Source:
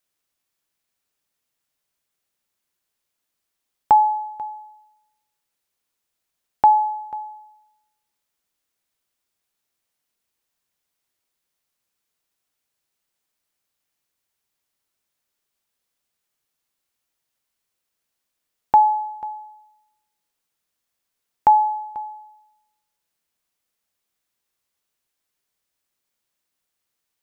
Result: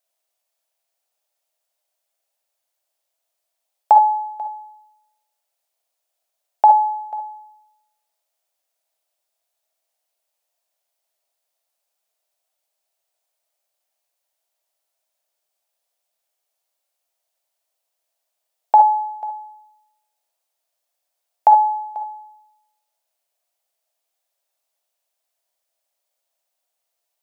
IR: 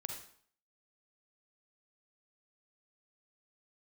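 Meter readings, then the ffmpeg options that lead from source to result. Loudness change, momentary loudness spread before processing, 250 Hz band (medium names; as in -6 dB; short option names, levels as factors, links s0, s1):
+2.5 dB, 18 LU, no reading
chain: -filter_complex "[0:a]highpass=f=660:t=q:w=4.9,equalizer=f=1200:w=0.57:g=-6.5[s0];[1:a]atrim=start_sample=2205,atrim=end_sample=3528[s1];[s0][s1]afir=irnorm=-1:irlink=0,volume=1.5"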